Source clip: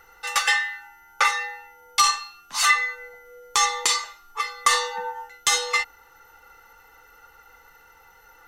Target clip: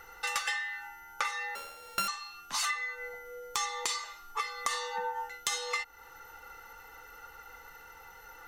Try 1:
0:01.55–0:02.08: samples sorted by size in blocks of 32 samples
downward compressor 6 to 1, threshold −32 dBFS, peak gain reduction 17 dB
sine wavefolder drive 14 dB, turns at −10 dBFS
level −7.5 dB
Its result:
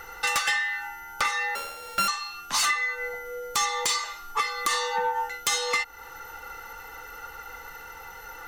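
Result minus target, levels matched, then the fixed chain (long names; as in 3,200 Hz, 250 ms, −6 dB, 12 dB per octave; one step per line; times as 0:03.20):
sine wavefolder: distortion +11 dB
0:01.55–0:02.08: samples sorted by size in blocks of 32 samples
downward compressor 6 to 1, threshold −32 dBFS, peak gain reduction 17 dB
sine wavefolder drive 5 dB, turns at −10 dBFS
level −7.5 dB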